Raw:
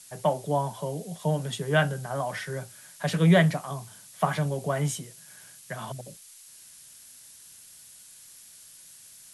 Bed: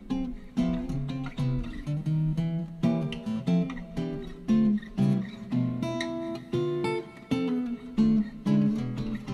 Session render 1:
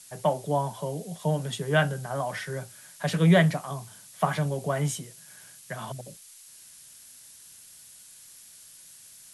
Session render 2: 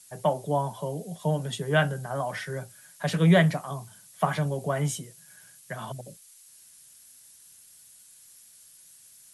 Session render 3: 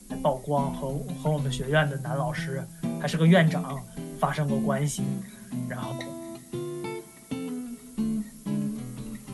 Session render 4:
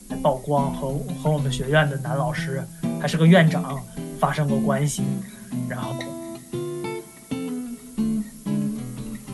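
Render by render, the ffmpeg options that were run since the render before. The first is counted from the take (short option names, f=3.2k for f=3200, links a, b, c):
-af anull
-af "afftdn=nr=6:nf=-51"
-filter_complex "[1:a]volume=-5.5dB[a];[0:a][a]amix=inputs=2:normalize=0"
-af "volume=4.5dB"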